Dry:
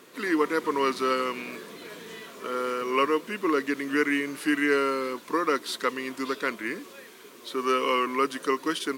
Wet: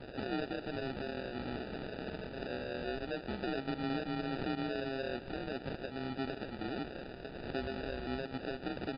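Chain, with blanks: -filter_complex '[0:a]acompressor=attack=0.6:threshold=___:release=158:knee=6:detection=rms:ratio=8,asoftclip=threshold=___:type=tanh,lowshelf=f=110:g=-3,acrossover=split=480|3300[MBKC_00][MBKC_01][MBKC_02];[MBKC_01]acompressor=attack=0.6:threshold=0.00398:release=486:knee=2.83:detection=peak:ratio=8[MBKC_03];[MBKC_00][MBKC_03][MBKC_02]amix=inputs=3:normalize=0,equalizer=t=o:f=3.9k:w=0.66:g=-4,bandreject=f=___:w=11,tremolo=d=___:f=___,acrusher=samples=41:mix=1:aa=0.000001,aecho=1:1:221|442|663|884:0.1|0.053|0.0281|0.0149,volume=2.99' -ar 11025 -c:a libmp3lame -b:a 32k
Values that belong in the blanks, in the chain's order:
0.0355, 0.0168, 3.2k, 0.824, 130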